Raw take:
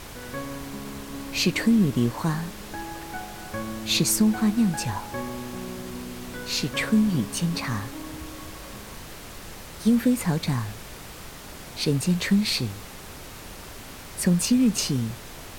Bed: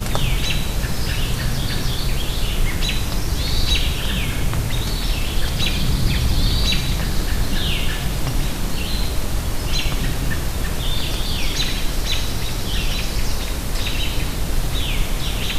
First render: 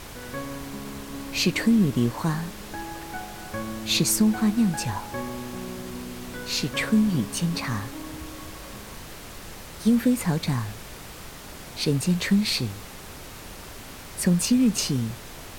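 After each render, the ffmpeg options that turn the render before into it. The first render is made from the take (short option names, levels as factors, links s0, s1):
-af anull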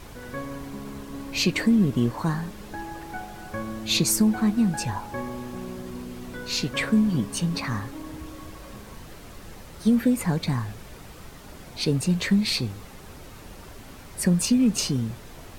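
-af "afftdn=nr=7:nf=-41"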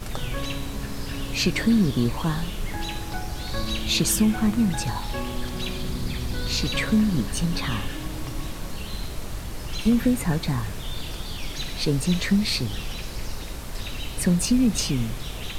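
-filter_complex "[1:a]volume=0.282[s0];[0:a][s0]amix=inputs=2:normalize=0"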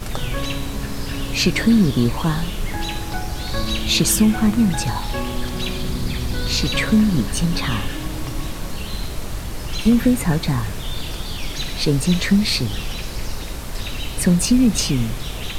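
-af "volume=1.78"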